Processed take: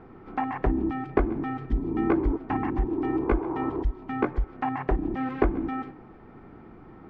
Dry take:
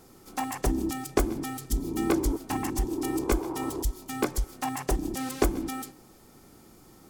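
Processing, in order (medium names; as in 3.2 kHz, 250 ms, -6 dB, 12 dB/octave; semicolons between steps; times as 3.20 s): low-pass 2.1 kHz 24 dB/octave; band-stop 550 Hz, Q 12; in parallel at +2 dB: compression, threshold -37 dBFS, peak gain reduction 17.5 dB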